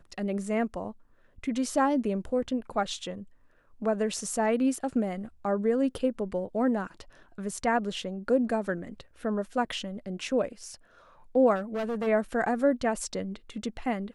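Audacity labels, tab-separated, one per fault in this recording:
11.550000	12.080000	clipping −27.5 dBFS

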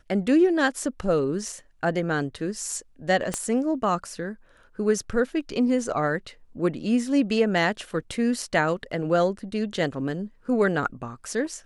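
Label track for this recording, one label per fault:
3.340000	3.340000	click −12 dBFS

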